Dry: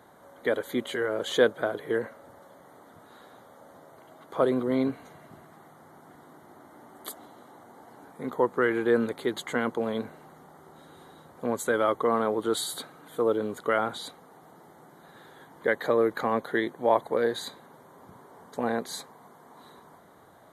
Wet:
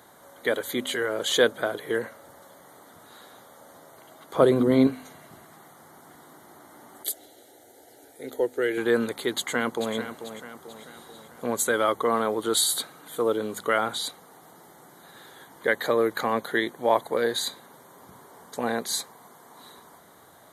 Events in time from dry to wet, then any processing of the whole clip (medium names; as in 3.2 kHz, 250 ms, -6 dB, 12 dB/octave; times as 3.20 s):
4.34–4.87 s: bass shelf 490 Hz +10 dB
7.03–8.78 s: static phaser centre 450 Hz, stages 4
9.35–9.95 s: echo throw 440 ms, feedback 50%, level -10.5 dB
whole clip: treble shelf 2.5 kHz +11.5 dB; de-hum 51.22 Hz, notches 5